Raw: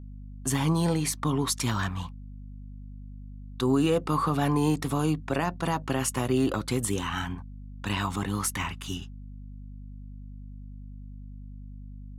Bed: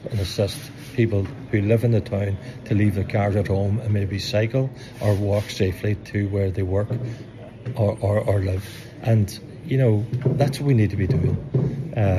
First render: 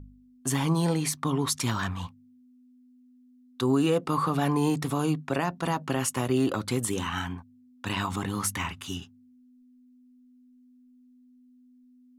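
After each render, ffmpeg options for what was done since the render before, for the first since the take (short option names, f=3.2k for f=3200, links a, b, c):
-af "bandreject=f=50:t=h:w=4,bandreject=f=100:t=h:w=4,bandreject=f=150:t=h:w=4,bandreject=f=200:t=h:w=4"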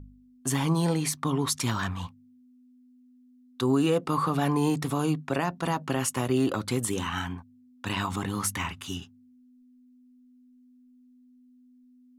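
-af anull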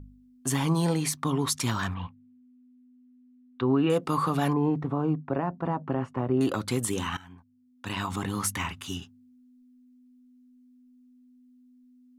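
-filter_complex "[0:a]asettb=1/sr,asplit=3[a][b][c];[a]atrim=end=1.944[d];[b]atrim=start=1.94:end=3.9,asetpts=PTS-STARTPTS,afade=t=in:d=0.004:c=qsin,afade=t=out:st=1.956:d=0.004:c=qsin,lowpass=f=2.9k:w=0.5412,lowpass=f=2.9k:w=1.3066[e];[c]atrim=start=3.896[f];[d][e]acrossfade=d=0.004:c1=hsin:c2=qsin[g];[g][f]acrossfade=d=0.004:c1=qsin:c2=hsin,asettb=1/sr,asplit=3[h][i][j];[h]atrim=end=4.534[k];[i]atrim=start=4.53:end=6.41,asetpts=PTS-STARTPTS,afade=t=in:d=0.004:c=qsin,afade=t=out:st=1.876:d=0.004:c=qsin,lowpass=1.1k[l];[j]atrim=start=6.406[m];[k][l]acrossfade=d=0.004:c1=hsin:c2=qsin[n];[n][m]acrossfade=d=0.004:c1=qsin:c2=hsin,asplit=2[o][p];[o]atrim=end=7.17,asetpts=PTS-STARTPTS,afade=t=out:st=7.166:d=0.004:c=hsin:silence=0.0891251[q];[p]atrim=start=7.17,asetpts=PTS-STARTPTS,afade=t=in:d=1.08:silence=0.0891251[r];[q][r]concat=n=2:v=0:a=1"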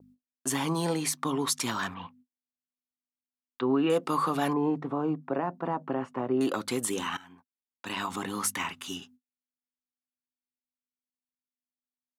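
-af "agate=range=-47dB:threshold=-51dB:ratio=16:detection=peak,highpass=240"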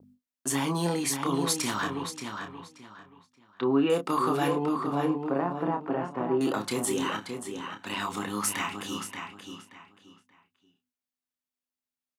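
-filter_complex "[0:a]asplit=2[a][b];[b]adelay=29,volume=-7dB[c];[a][c]amix=inputs=2:normalize=0,asplit=2[d][e];[e]adelay=579,lowpass=f=4.8k:p=1,volume=-6dB,asplit=2[f][g];[g]adelay=579,lowpass=f=4.8k:p=1,volume=0.27,asplit=2[h][i];[i]adelay=579,lowpass=f=4.8k:p=1,volume=0.27[j];[d][f][h][j]amix=inputs=4:normalize=0"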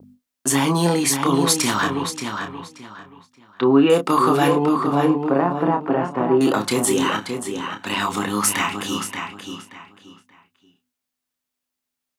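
-af "volume=9.5dB"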